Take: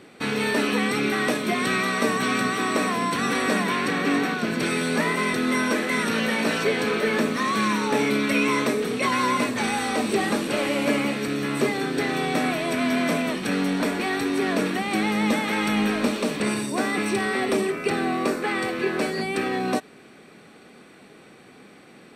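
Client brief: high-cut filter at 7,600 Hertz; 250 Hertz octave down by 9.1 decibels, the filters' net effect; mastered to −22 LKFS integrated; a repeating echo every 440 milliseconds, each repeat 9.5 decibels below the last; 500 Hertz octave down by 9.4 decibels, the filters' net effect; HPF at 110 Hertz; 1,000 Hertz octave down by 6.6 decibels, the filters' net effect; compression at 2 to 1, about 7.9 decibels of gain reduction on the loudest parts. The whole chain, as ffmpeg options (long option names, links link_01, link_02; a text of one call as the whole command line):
ffmpeg -i in.wav -af "highpass=110,lowpass=7600,equalizer=frequency=250:width_type=o:gain=-8.5,equalizer=frequency=500:width_type=o:gain=-8,equalizer=frequency=1000:width_type=o:gain=-5.5,acompressor=threshold=-39dB:ratio=2,aecho=1:1:440|880|1320|1760:0.335|0.111|0.0365|0.012,volume=13dB" out.wav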